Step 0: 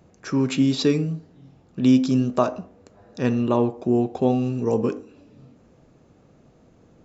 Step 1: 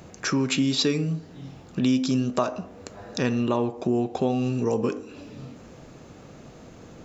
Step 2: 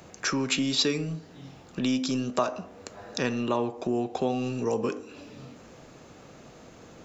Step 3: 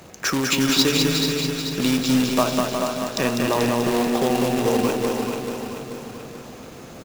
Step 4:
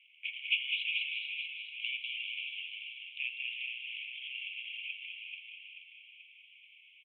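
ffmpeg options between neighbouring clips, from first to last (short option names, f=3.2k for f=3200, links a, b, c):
-filter_complex "[0:a]asplit=2[a][b];[b]alimiter=limit=-16dB:level=0:latency=1:release=261,volume=-3dB[c];[a][c]amix=inputs=2:normalize=0,tiltshelf=f=1.1k:g=-3.5,acompressor=threshold=-36dB:ratio=2,volume=7dB"
-filter_complex "[0:a]lowshelf=f=340:g=-7,acrossover=split=200[a][b];[a]aeval=exprs='clip(val(0),-1,0.0178)':c=same[c];[c][b]amix=inputs=2:normalize=0"
-filter_complex "[0:a]asplit=2[a][b];[b]aecho=0:1:200|360|488|590.4|672.3:0.631|0.398|0.251|0.158|0.1[c];[a][c]amix=inputs=2:normalize=0,acrusher=bits=2:mode=log:mix=0:aa=0.000001,asplit=2[d][e];[e]aecho=0:1:435|870|1305|1740|2175|2610:0.473|0.241|0.123|0.0628|0.032|0.0163[f];[d][f]amix=inputs=2:normalize=0,volume=4.5dB"
-af "asuperpass=centerf=2700:order=12:qfactor=2.5,volume=-3.5dB"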